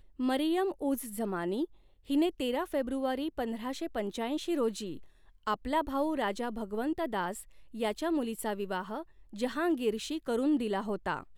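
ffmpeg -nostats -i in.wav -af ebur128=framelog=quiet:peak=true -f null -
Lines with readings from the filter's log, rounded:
Integrated loudness:
  I:         -33.0 LUFS
  Threshold: -43.2 LUFS
Loudness range:
  LRA:         2.0 LU
  Threshold: -53.6 LUFS
  LRA low:   -34.5 LUFS
  LRA high:  -32.6 LUFS
True peak:
  Peak:      -17.9 dBFS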